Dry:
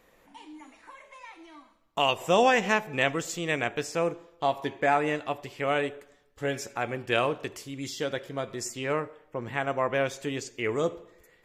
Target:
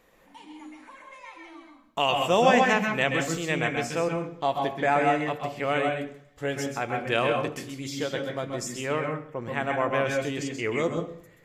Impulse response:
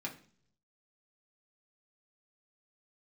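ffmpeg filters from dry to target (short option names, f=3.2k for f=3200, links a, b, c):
-filter_complex "[0:a]asplit=2[a][b];[1:a]atrim=start_sample=2205,asetrate=39690,aresample=44100,adelay=130[c];[b][c]afir=irnorm=-1:irlink=0,volume=-3.5dB[d];[a][d]amix=inputs=2:normalize=0"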